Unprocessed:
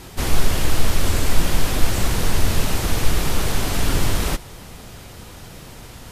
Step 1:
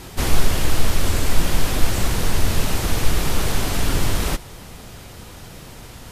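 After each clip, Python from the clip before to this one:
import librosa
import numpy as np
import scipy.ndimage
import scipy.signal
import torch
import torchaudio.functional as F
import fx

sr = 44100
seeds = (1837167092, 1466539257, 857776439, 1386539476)

y = fx.rider(x, sr, range_db=10, speed_s=0.5)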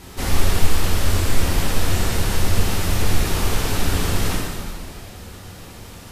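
y = fx.quant_dither(x, sr, seeds[0], bits=12, dither='none')
y = fx.rev_plate(y, sr, seeds[1], rt60_s=2.1, hf_ratio=0.9, predelay_ms=0, drr_db=-4.0)
y = y * 10.0 ** (-5.0 / 20.0)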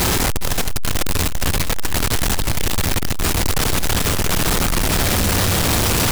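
y = np.sign(x) * np.sqrt(np.mean(np.square(x)))
y = y + 10.0 ** (-12.0 / 20.0) * np.pad(y, (int(411 * sr / 1000.0), 0))[:len(y)]
y = y * 10.0 ** (-1.5 / 20.0)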